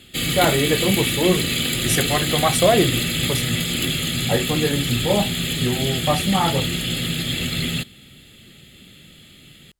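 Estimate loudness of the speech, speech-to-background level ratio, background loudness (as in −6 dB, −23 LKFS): −22.5 LKFS, −1.0 dB, −21.5 LKFS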